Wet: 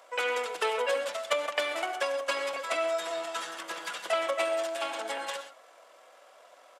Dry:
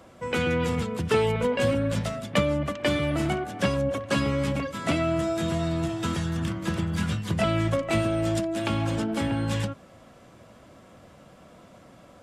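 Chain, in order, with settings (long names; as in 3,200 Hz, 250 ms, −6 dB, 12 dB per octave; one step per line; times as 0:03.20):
high-pass filter 550 Hz 24 dB per octave
tempo change 1.8×
reverb whose tail is shaped and stops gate 150 ms rising, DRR 10 dB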